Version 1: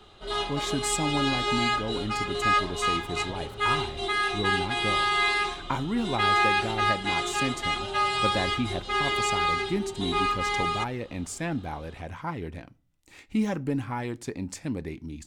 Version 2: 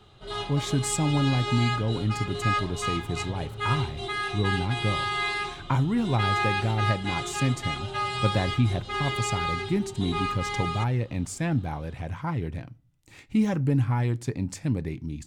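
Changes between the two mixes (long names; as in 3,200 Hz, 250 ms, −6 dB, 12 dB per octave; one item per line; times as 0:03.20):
background −4.0 dB
master: add parametric band 120 Hz +13 dB 0.88 octaves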